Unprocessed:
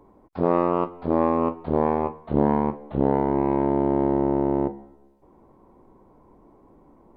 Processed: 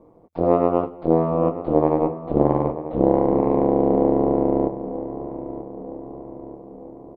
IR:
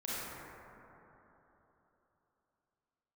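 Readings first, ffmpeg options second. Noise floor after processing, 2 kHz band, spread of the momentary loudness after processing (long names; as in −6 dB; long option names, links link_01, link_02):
−45 dBFS, can't be measured, 18 LU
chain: -filter_complex "[0:a]equalizer=frequency=250:width_type=o:width=0.33:gain=6,equalizer=frequency=400:width_type=o:width=0.33:gain=11,equalizer=frequency=630:width_type=o:width=0.33:gain=10,equalizer=frequency=1600:width_type=o:width=0.33:gain=-6,aeval=exprs='val(0)*sin(2*PI*83*n/s)':channel_layout=same,asplit=2[link_01][link_02];[link_02]adelay=935,lowpass=frequency=2100:poles=1,volume=-12dB,asplit=2[link_03][link_04];[link_04]adelay=935,lowpass=frequency=2100:poles=1,volume=0.54,asplit=2[link_05][link_06];[link_06]adelay=935,lowpass=frequency=2100:poles=1,volume=0.54,asplit=2[link_07][link_08];[link_08]adelay=935,lowpass=frequency=2100:poles=1,volume=0.54,asplit=2[link_09][link_10];[link_10]adelay=935,lowpass=frequency=2100:poles=1,volume=0.54,asplit=2[link_11][link_12];[link_12]adelay=935,lowpass=frequency=2100:poles=1,volume=0.54[link_13];[link_01][link_03][link_05][link_07][link_09][link_11][link_13]amix=inputs=7:normalize=0"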